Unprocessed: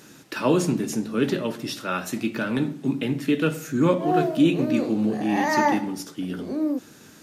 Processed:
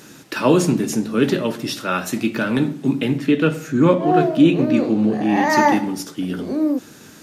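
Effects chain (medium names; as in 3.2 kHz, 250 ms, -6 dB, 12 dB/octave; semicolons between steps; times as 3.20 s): 3.18–5.50 s: treble shelf 6.2 kHz -11 dB; trim +5.5 dB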